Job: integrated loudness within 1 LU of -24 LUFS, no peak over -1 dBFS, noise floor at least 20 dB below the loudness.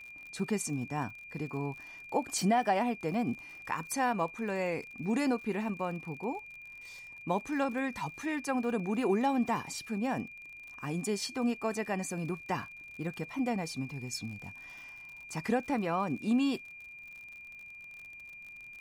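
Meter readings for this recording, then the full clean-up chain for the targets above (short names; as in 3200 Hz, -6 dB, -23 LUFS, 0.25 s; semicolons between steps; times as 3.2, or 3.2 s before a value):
ticks 52/s; steady tone 2400 Hz; tone level -46 dBFS; loudness -33.5 LUFS; peak -17.5 dBFS; loudness target -24.0 LUFS
-> de-click; notch 2400 Hz, Q 30; gain +9.5 dB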